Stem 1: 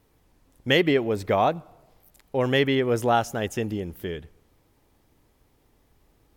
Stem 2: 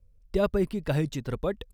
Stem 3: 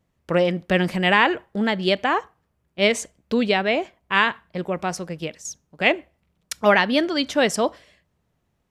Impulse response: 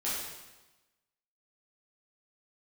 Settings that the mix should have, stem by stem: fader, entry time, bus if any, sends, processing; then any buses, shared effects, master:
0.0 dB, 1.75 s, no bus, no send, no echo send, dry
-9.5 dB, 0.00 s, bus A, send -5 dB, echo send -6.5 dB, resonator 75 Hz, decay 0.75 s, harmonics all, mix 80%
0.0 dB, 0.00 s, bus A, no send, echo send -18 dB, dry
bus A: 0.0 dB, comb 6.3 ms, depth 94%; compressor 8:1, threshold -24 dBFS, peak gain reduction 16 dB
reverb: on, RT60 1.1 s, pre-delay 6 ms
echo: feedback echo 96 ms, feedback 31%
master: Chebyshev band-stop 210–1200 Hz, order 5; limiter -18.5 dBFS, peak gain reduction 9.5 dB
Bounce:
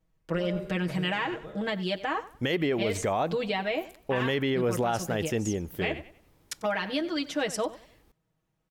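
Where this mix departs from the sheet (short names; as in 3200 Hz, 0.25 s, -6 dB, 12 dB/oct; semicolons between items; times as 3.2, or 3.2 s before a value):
stem 3 0.0 dB -> -9.0 dB; master: missing Chebyshev band-stop 210–1200 Hz, order 5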